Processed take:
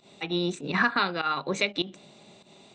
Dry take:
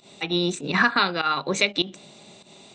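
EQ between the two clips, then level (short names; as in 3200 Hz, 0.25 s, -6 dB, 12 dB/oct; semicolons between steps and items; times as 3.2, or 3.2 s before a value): high shelf 4700 Hz -7.5 dB; -3.5 dB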